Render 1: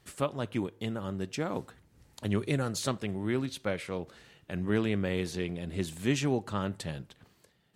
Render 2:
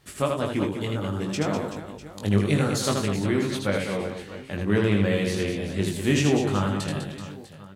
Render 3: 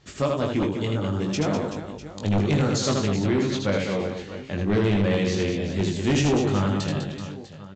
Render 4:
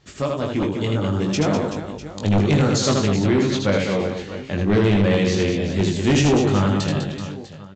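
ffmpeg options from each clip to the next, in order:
-filter_complex "[0:a]asplit=2[s0][s1];[s1]adelay=20,volume=0.631[s2];[s0][s2]amix=inputs=2:normalize=0,asplit=2[s3][s4];[s4]aecho=0:1:80|200|380|650|1055:0.631|0.398|0.251|0.158|0.1[s5];[s3][s5]amix=inputs=2:normalize=0,volume=1.58"
-af "equalizer=f=1600:t=o:w=2:g=-3,aresample=16000,aeval=exprs='0.422*sin(PI/2*2.51*val(0)/0.422)':c=same,aresample=44100,volume=0.376"
-af "dynaudnorm=f=470:g=3:m=1.68"

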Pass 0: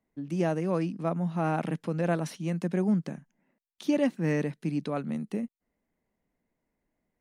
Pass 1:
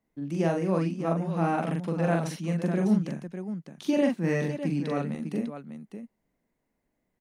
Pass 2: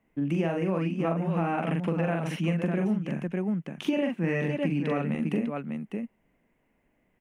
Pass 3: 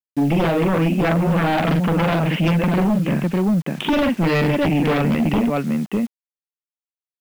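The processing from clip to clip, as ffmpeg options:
-af "aecho=1:1:42|600:0.708|0.355"
-af "highshelf=f=3400:t=q:w=3:g=-7,acompressor=threshold=0.0282:ratio=10,volume=2.37"
-af "aresample=8000,aresample=44100,aeval=exprs='0.2*sin(PI/2*3.16*val(0)/0.2)':c=same,acrusher=bits=6:mix=0:aa=0.000001"

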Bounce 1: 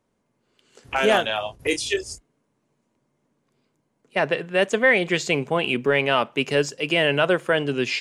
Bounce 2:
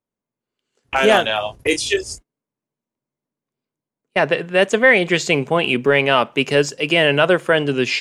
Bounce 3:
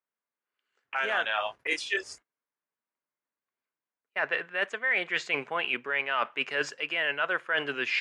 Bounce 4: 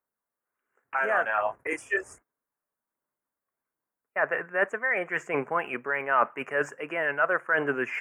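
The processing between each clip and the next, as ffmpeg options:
-af "agate=range=0.0891:threshold=0.00794:ratio=16:detection=peak,volume=1.78"
-af "bandpass=f=1600:t=q:w=1.6:csg=0,areverse,acompressor=threshold=0.0398:ratio=6,areverse,volume=1.33"
-af "aphaser=in_gain=1:out_gain=1:delay=1.7:decay=0.24:speed=1.3:type=sinusoidal,asuperstop=centerf=4000:order=4:qfactor=0.55,volume=1.78"

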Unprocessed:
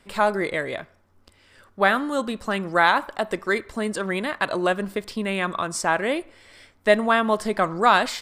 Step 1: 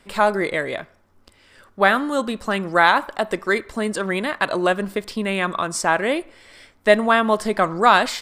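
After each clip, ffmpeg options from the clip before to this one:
-af "equalizer=f=92:w=1.5:g=-3.5,volume=1.41"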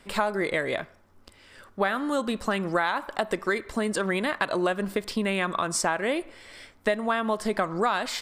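-af "acompressor=threshold=0.0794:ratio=6"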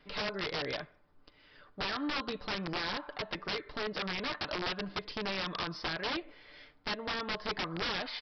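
-af "aecho=1:1:6.7:0.55,aresample=11025,aeval=exprs='(mod(10*val(0)+1,2)-1)/10':c=same,aresample=44100,volume=0.376"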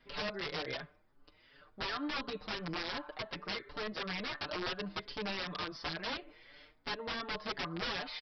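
-filter_complex "[0:a]asplit=2[s0][s1];[s1]adelay=5.8,afreqshift=2.8[s2];[s0][s2]amix=inputs=2:normalize=1"

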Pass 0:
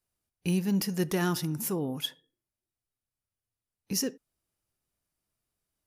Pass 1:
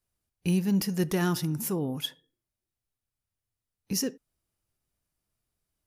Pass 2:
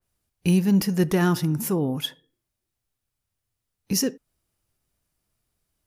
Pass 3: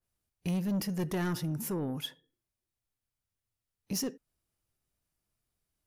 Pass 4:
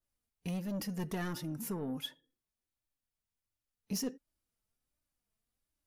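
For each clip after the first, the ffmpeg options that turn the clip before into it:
-af "lowshelf=f=140:g=6"
-af "adynamicequalizer=threshold=0.00355:dfrequency=2700:dqfactor=0.7:tfrequency=2700:tqfactor=0.7:attack=5:release=100:ratio=0.375:range=3:mode=cutabove:tftype=highshelf,volume=2"
-af "asoftclip=type=tanh:threshold=0.106,volume=0.422"
-af "flanger=delay=3.2:depth=1.5:regen=36:speed=1.4:shape=triangular"

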